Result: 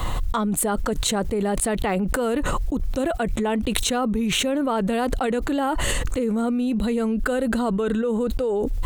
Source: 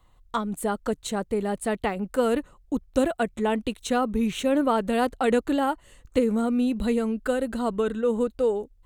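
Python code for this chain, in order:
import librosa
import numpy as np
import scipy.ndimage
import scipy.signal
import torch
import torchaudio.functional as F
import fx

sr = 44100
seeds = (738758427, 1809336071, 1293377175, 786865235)

y = fx.env_flatten(x, sr, amount_pct=100)
y = y * 10.0 ** (-4.5 / 20.0)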